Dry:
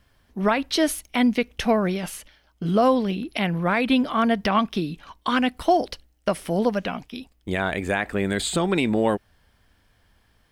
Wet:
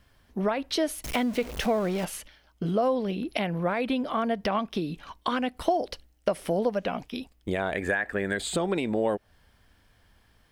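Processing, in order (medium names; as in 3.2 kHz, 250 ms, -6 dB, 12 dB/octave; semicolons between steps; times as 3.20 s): 1.04–2.05 s: jump at every zero crossing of -28 dBFS; 7.75–8.37 s: peaking EQ 1.7 kHz +14 dB 0.36 oct; compression 4:1, threshold -28 dBFS, peak gain reduction 13.5 dB; dynamic bell 550 Hz, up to +7 dB, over -44 dBFS, Q 1.1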